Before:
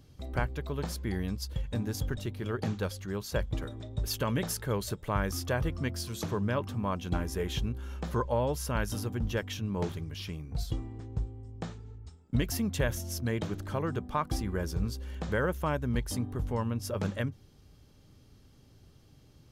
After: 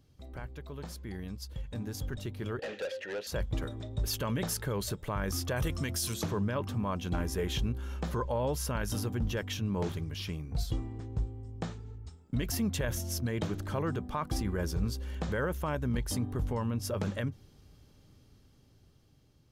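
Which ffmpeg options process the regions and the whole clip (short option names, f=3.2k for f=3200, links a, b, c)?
-filter_complex "[0:a]asettb=1/sr,asplit=3[a][b][c];[a]atrim=end=2.594[d];[b]atrim=start=2.59:end=3.27,asetpts=PTS-STARTPTS,afade=t=in:d=0.004:c=qsin,afade=t=out:st=0.676:d=0.004:c=qsin,asplit=3[e][f][g];[e]bandpass=f=530:t=q:w=8,volume=0dB[h];[f]bandpass=f=1.84k:t=q:w=8,volume=-6dB[i];[g]bandpass=f=2.48k:t=q:w=8,volume=-9dB[j];[h][i][j]amix=inputs=3:normalize=0,asplit=2[k][l];[l]highpass=f=720:p=1,volume=29dB,asoftclip=type=tanh:threshold=-29dB[m];[k][m]amix=inputs=2:normalize=0,lowpass=f=7.3k:p=1,volume=-6dB[n];[c]atrim=start=3.266[o];[d][n]acrossfade=d=0.004:c1=hsin:c2=qsin[p];[p][o]acrossfade=d=0.004:c1=qsin:c2=hsin,asettb=1/sr,asplit=3[q][r][s];[q]atrim=end=5.564[t];[r]atrim=start=5.56:end=6.14,asetpts=PTS-STARTPTS,afade=t=in:d=0.004:c=qsin,afade=t=out:st=0.576:d=0.004:c=qsin,equalizer=f=11k:t=o:w=2.8:g=13,bandreject=f=4.6k:w=8[u];[s]atrim=start=6.136[v];[t][u]acrossfade=d=0.004:c1=hsin:c2=qsin[w];[w][v]acrossfade=d=0.004:c1=qsin:c2=hsin,alimiter=level_in=0.5dB:limit=-24dB:level=0:latency=1:release=13,volume=-0.5dB,dynaudnorm=f=640:g=7:m=9dB,volume=-7.5dB"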